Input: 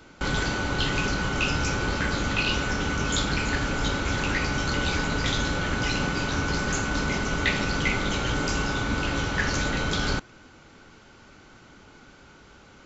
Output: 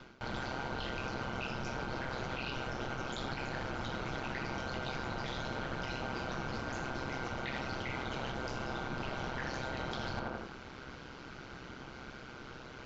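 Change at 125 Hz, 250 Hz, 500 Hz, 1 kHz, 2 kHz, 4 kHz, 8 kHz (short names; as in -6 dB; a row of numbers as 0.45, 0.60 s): -13.5 dB, -13.0 dB, -9.0 dB, -8.5 dB, -13.5 dB, -14.5 dB, n/a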